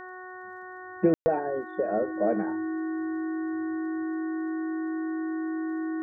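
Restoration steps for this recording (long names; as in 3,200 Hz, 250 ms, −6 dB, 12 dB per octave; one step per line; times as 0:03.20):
click removal
hum removal 368.2 Hz, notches 5
notch filter 320 Hz, Q 30
ambience match 0:01.14–0:01.26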